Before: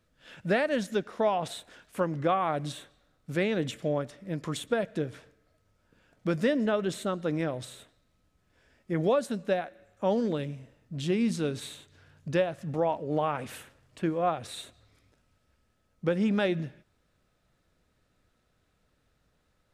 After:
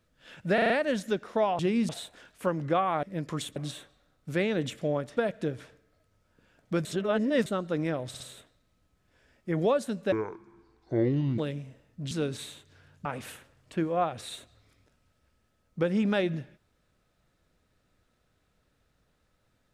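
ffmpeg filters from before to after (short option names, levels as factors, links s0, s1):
-filter_complex "[0:a]asplit=18[s0][s1][s2][s3][s4][s5][s6][s7][s8][s9][s10][s11][s12][s13][s14][s15][s16][s17];[s0]atrim=end=0.582[s18];[s1]atrim=start=0.538:end=0.582[s19];[s2]atrim=start=0.538:end=0.582[s20];[s3]atrim=start=0.538:end=0.582[s21];[s4]atrim=start=0.538:end=1.432[s22];[s5]atrim=start=11.038:end=11.342[s23];[s6]atrim=start=1.428:end=2.572[s24];[s7]atrim=start=4.178:end=4.712[s25];[s8]atrim=start=2.568:end=4.182[s26];[s9]atrim=start=4.708:end=6.392[s27];[s10]atrim=start=6.388:end=7.002,asetpts=PTS-STARTPTS,areverse[s28];[s11]atrim=start=6.998:end=7.682[s29];[s12]atrim=start=7.618:end=7.682[s30];[s13]atrim=start=7.618:end=9.544[s31];[s14]atrim=start=9.54:end=10.31,asetpts=PTS-STARTPTS,asetrate=26901,aresample=44100,atrim=end_sample=55667,asetpts=PTS-STARTPTS[s32];[s15]atrim=start=10.306:end=11.042[s33];[s16]atrim=start=11.338:end=12.282[s34];[s17]atrim=start=13.308[s35];[s18][s19]acrossfade=d=0.004:c1=hsin:c2=hsin[s36];[s36][s20]acrossfade=d=0.004:c1=hsin:c2=hsin[s37];[s37][s21]acrossfade=d=0.004:c1=hsin:c2=hsin[s38];[s38][s22]acrossfade=d=0.004:c1=hsin:c2=hsin[s39];[s39][s23]acrossfade=d=0.004:c1=hsin:c2=hsin[s40];[s40][s24]acrossfade=d=0.004:c1=hsin:c2=hsin[s41];[s41][s25]acrossfade=d=0.004:c1=hsin:c2=hsin[s42];[s42][s26]acrossfade=d=0.004:c1=hsin:c2=hsin[s43];[s43][s27]acrossfade=d=0.004:c1=hsin:c2=hsin[s44];[s44][s28]acrossfade=d=0.004:c1=hsin:c2=hsin[s45];[s45][s29]acrossfade=d=0.004:c1=hsin:c2=hsin[s46];[s46][s30]acrossfade=d=0.004:c1=hsin:c2=hsin[s47];[s47][s31]acrossfade=d=0.004:c1=hsin:c2=hsin[s48];[s48][s32]acrossfade=d=0.004:c1=hsin:c2=hsin[s49];[s49][s33]acrossfade=d=0.004:c1=hsin:c2=hsin[s50];[s50][s34]acrossfade=d=0.004:c1=hsin:c2=hsin[s51];[s51][s35]acrossfade=d=0.004:c1=hsin:c2=hsin"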